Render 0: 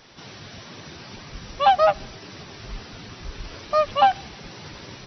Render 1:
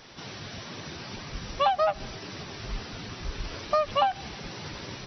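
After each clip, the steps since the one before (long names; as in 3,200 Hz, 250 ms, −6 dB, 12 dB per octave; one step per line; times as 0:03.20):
downward compressor 12 to 1, threshold −21 dBFS, peak gain reduction 10.5 dB
level +1 dB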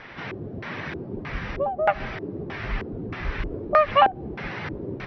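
auto-filter low-pass square 1.6 Hz 390–2,000 Hz
level +5.5 dB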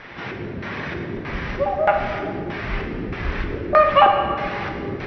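dense smooth reverb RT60 1.9 s, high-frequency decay 0.9×, DRR 2 dB
level +2.5 dB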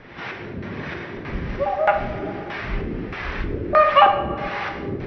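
two-band tremolo in antiphase 1.4 Hz, depth 70%, crossover 540 Hz
level +2 dB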